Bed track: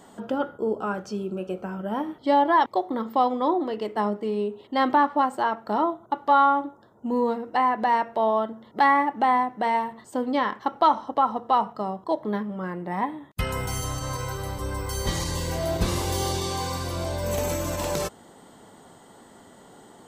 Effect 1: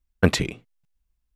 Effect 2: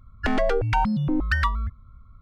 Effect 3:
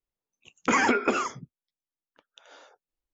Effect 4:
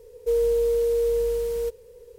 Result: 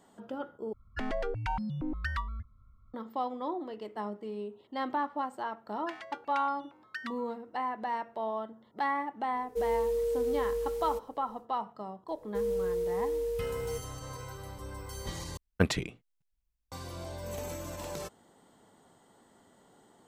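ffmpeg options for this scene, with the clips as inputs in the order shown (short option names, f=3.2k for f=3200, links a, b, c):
-filter_complex "[2:a]asplit=2[a][b];[4:a]asplit=2[c][d];[0:a]volume=-12dB[e];[b]highpass=1.4k[f];[e]asplit=3[g][h][i];[g]atrim=end=0.734[j];[a]atrim=end=2.21,asetpts=PTS-STARTPTS,volume=-11.5dB[k];[h]atrim=start=2.936:end=15.374[l];[1:a]atrim=end=1.35,asetpts=PTS-STARTPTS,volume=-8dB[m];[i]atrim=start=16.716[n];[f]atrim=end=2.21,asetpts=PTS-STARTPTS,volume=-13dB,afade=t=in:d=0.004:c=hsin,afade=t=out:st=2.206:d=0.004:c=hsin,adelay=5630[o];[c]atrim=end=2.18,asetpts=PTS-STARTPTS,volume=-8dB,afade=t=in:d=0.1,afade=t=out:st=2.08:d=0.1,adelay=9290[p];[d]atrim=end=2.18,asetpts=PTS-STARTPTS,volume=-9.5dB,afade=t=in:d=0.004:c=hsin,afade=t=out:st=2.176:d=0.004:c=hsin,adelay=12080[q];[j][k]acrossfade=d=0.004:c1=hsin:c2=hsin[r];[r][l]acrossfade=d=0.004:c1=hsin:c2=hsin[s];[s][m]acrossfade=d=0.004:c1=hsin:c2=hsin[t];[t][n]acrossfade=d=0.004:c1=hsin:c2=hsin[u];[u][o][p][q]amix=inputs=4:normalize=0"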